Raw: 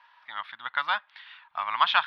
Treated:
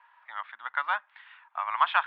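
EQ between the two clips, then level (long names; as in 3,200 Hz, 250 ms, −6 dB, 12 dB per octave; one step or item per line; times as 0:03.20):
Butterworth high-pass 160 Hz 96 dB per octave
high-frequency loss of the air 94 metres
three-way crossover with the lows and the highs turned down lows −21 dB, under 390 Hz, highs −18 dB, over 2,700 Hz
0.0 dB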